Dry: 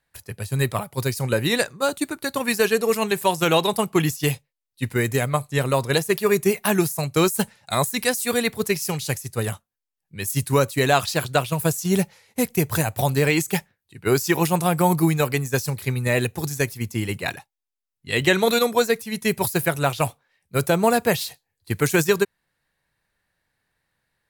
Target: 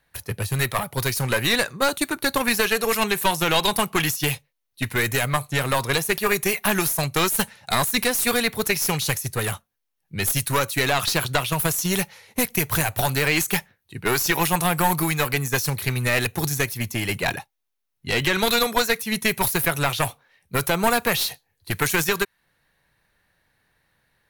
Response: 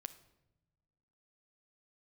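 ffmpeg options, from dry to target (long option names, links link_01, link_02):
-filter_complex "[0:a]equalizer=frequency=7700:width=3.2:gain=-6.5,bandreject=frequency=4900:width=15,acrossover=split=850[link_01][link_02];[link_01]acompressor=threshold=-29dB:ratio=10[link_03];[link_02]alimiter=limit=-16dB:level=0:latency=1:release=85[link_04];[link_03][link_04]amix=inputs=2:normalize=0,aeval=exprs='clip(val(0),-1,0.0376)':channel_layout=same,volume=7.5dB"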